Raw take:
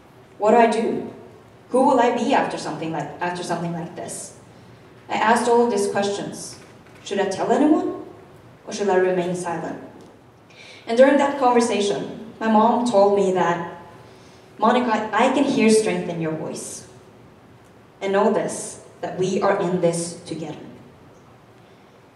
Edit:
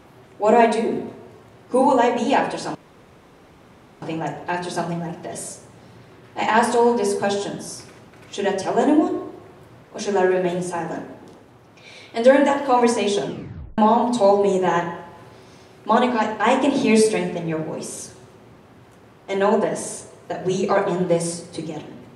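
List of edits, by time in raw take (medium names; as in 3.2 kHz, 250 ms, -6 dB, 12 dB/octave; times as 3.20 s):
2.75 s: insert room tone 1.27 s
11.99 s: tape stop 0.52 s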